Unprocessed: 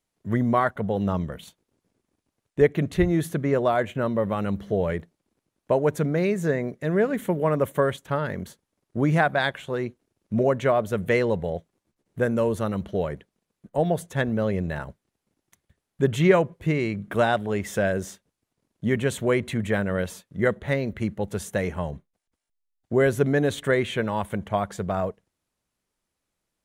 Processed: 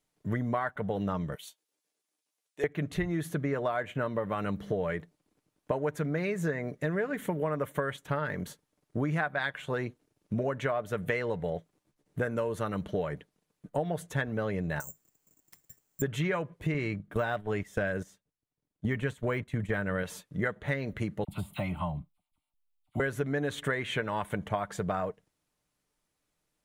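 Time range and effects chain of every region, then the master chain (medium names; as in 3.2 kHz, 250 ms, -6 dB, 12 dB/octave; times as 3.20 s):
1.35–2.64 s: high-pass 850 Hz + peaking EQ 1.2 kHz -9.5 dB 2.4 oct + doubling 13 ms -6.5 dB
14.80–16.02 s: compression 3:1, threshold -49 dBFS + careless resampling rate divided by 6×, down filtered, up zero stuff
16.74–20.03 s: gate -31 dBFS, range -15 dB + bass shelf 120 Hz +8 dB + de-esser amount 90%
21.24–23.00 s: de-esser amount 95% + static phaser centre 1.7 kHz, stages 6 + phase dispersion lows, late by 43 ms, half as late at 1.4 kHz
whole clip: comb 6.7 ms, depth 34%; dynamic bell 1.6 kHz, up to +7 dB, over -37 dBFS, Q 0.8; compression 6:1, threshold -28 dBFS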